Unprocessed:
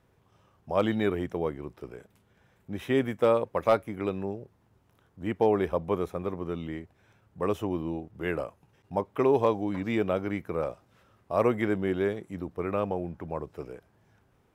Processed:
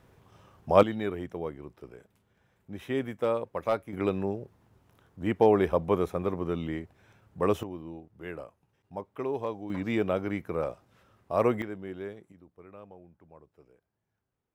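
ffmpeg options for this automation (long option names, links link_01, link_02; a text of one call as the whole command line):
ffmpeg -i in.wav -af "asetnsamples=nb_out_samples=441:pad=0,asendcmd='0.83 volume volume -5dB;3.93 volume volume 2.5dB;7.63 volume volume -9dB;9.7 volume volume -0.5dB;11.62 volume volume -11dB;12.32 volume volume -19.5dB',volume=6.5dB" out.wav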